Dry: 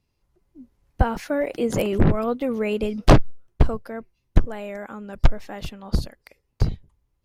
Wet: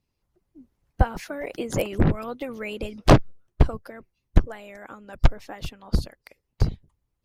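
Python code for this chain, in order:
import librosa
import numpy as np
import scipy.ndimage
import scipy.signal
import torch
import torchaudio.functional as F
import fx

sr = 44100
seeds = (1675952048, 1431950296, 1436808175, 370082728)

y = fx.hpss(x, sr, part='harmonic', gain_db=-11)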